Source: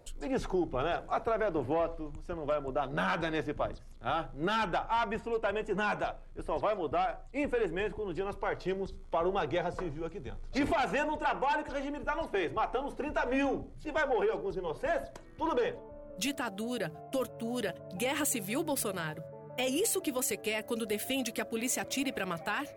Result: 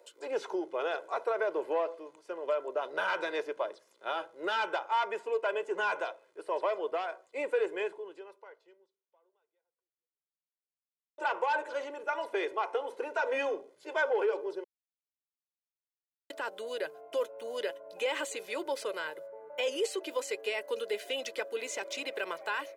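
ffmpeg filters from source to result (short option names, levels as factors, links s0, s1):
-filter_complex "[0:a]asplit=4[s0][s1][s2][s3];[s0]atrim=end=11.18,asetpts=PTS-STARTPTS,afade=t=out:st=7.84:d=3.34:c=exp[s4];[s1]atrim=start=11.18:end=14.64,asetpts=PTS-STARTPTS,afade=t=in:d=0.004:c=hsin,afade=t=out:st=3.456:d=0.004:c=hsin[s5];[s2]atrim=start=14.64:end=16.3,asetpts=PTS-STARTPTS,volume=0[s6];[s3]atrim=start=16.3,asetpts=PTS-STARTPTS,afade=t=in:d=0.004:c=hsin[s7];[s4][s5][s6][s7]concat=n=4:v=0:a=1,highpass=f=350:w=0.5412,highpass=f=350:w=1.3066,aecho=1:1:2:0.52,acrossover=split=6400[s8][s9];[s9]acompressor=threshold=0.00112:ratio=4:attack=1:release=60[s10];[s8][s10]amix=inputs=2:normalize=0,volume=0.891"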